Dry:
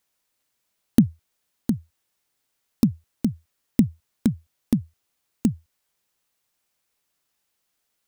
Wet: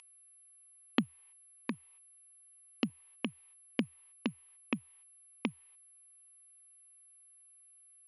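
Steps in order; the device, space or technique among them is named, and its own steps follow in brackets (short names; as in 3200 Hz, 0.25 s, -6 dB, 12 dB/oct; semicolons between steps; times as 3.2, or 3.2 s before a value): 1.74–2.9 HPF 48 Hz; gate -52 dBFS, range -12 dB; toy sound module (decimation joined by straight lines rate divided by 4×; pulse-width modulation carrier 11000 Hz; speaker cabinet 670–4600 Hz, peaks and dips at 680 Hz -10 dB, 980 Hz +4 dB, 1500 Hz -8 dB, 2600 Hz +5 dB, 3900 Hz -9 dB); gain +3.5 dB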